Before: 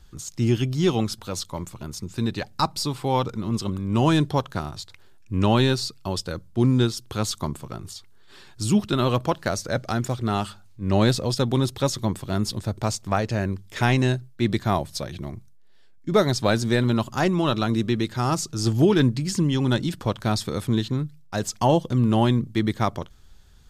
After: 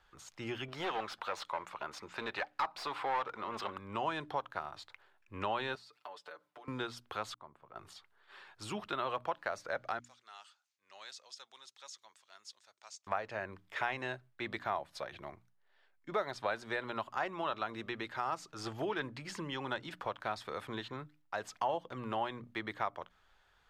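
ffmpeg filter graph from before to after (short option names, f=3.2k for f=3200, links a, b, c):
-filter_complex "[0:a]asettb=1/sr,asplit=3[a][b][c];[a]atrim=end=0.684[d];[b]atrim=start=0.68:end=3.78,asetpts=PTS-STARTPTS,afade=t=in:d=0.004:c=qsin,afade=t=out:st=3.096:d=0.004:c=qsin,asplit=2[e][f];[f]highpass=f=720:p=1,volume=15dB,asoftclip=type=tanh:threshold=-9dB[g];[e][g]amix=inputs=2:normalize=0,lowpass=f=3.1k:p=1,volume=-6dB,aeval=exprs='clip(val(0),-1,0.0447)':c=same[h];[c]atrim=start=3.776[i];[d][h]acrossfade=d=0.004:c1=hsin:c2=qsin[j];[j][i]acrossfade=d=0.004:c1=qsin:c2=hsin,asettb=1/sr,asplit=3[k][l][m];[k]atrim=end=5.754[n];[l]atrim=start=5.75:end=6.68,asetpts=PTS-STARTPTS,afade=t=in:d=0.004:c=qsin,afade=t=out:st=0.926:d=0.004:c=qsin,highpass=360,acompressor=threshold=-40dB:ratio=10:attack=3.2:release=140:knee=1:detection=peak,aecho=1:1:6.8:0.86,atrim=end_sample=41013[o];[m]atrim=start=6.676[p];[n][o]acrossfade=d=0.004:c1=hsin:c2=qsin[q];[q][p]acrossfade=d=0.004:c1=qsin:c2=hsin,asettb=1/sr,asplit=3[r][s][t];[r]atrim=end=7.344[u];[s]atrim=start=7.34:end=7.76,asetpts=PTS-STARTPTS,afade=t=in:d=0.004:c=qsin,afade=t=out:st=0.416:d=0.004:c=qsin,lowpass=f=1.2k:p=1,agate=range=-33dB:threshold=-41dB:ratio=3:release=100:detection=peak,acompressor=threshold=-46dB:ratio=2.5:attack=3.2:release=140:knee=1:detection=peak[v];[t]atrim=start=7.756[w];[u][v]acrossfade=d=0.004:c1=hsin:c2=qsin[x];[x][w]acrossfade=d=0.004:c1=qsin:c2=hsin,asettb=1/sr,asplit=3[y][z][aa];[y]atrim=end=9.994[ab];[z]atrim=start=9.99:end=13.07,asetpts=PTS-STARTPTS,afade=t=in:d=0.004:c=qsin,afade=t=out:st=3.076:d=0.004:c=qsin,acompressor=mode=upward:threshold=-37dB:ratio=2.5:attack=3.2:release=140:knee=2.83:detection=peak,bandpass=f=6.4k:t=q:w=2.4[ac];[aa]atrim=start=13.066[ad];[ab][ac]acrossfade=d=0.004:c1=hsin:c2=qsin[ae];[ae][ad]acrossfade=d=0.004:c1=qsin:c2=hsin,acrossover=split=550 2800:gain=0.0794 1 0.112[af][ag][ah];[af][ag][ah]amix=inputs=3:normalize=0,bandreject=f=60:t=h:w=6,bandreject=f=120:t=h:w=6,bandreject=f=180:t=h:w=6,bandreject=f=240:t=h:w=6,bandreject=f=300:t=h:w=6,acompressor=threshold=-36dB:ratio=2,volume=-1dB"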